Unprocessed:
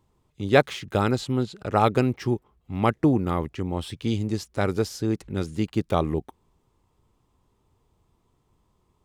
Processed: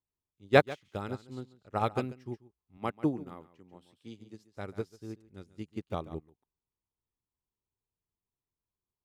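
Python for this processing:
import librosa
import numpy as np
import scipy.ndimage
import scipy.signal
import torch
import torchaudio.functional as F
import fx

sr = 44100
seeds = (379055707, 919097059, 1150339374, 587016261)

y = fx.highpass(x, sr, hz=140.0, slope=12, at=(2.77, 4.51))
y = y + 10.0 ** (-8.0 / 20.0) * np.pad(y, (int(140 * sr / 1000.0), 0))[:len(y)]
y = fx.upward_expand(y, sr, threshold_db=-31.0, expansion=2.5)
y = y * librosa.db_to_amplitude(-2.5)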